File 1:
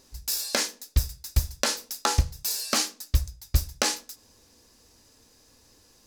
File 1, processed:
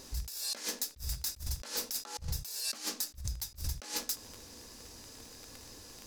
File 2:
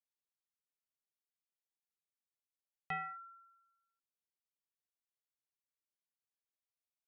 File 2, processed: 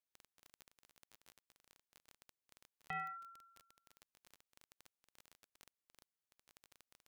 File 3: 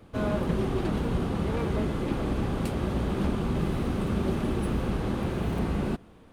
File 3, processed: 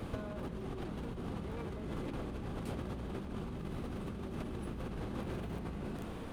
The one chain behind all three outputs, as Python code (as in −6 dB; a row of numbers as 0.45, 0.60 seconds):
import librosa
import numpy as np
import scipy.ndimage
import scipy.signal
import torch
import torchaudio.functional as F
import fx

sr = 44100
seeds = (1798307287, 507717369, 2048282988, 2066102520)

y = fx.dmg_crackle(x, sr, seeds[0], per_s=21.0, level_db=-40.0)
y = fx.over_compress(y, sr, threshold_db=-39.0, ratio=-1.0)
y = y * librosa.db_to_amplitude(-1.5)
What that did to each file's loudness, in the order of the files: −9.0, −3.5, −13.0 LU